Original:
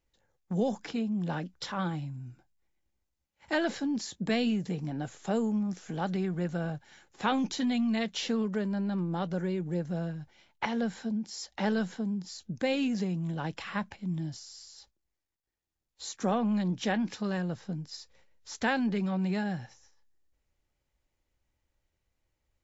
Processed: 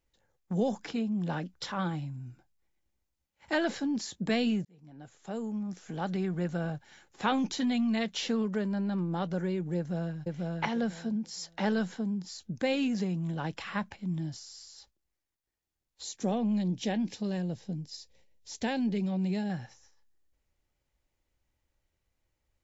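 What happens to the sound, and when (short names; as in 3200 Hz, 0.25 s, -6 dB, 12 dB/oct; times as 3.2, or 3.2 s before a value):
4.65–6.31 fade in
9.77–10.19 echo throw 0.49 s, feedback 20%, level -1.5 dB
16.03–19.5 bell 1300 Hz -14.5 dB 0.96 oct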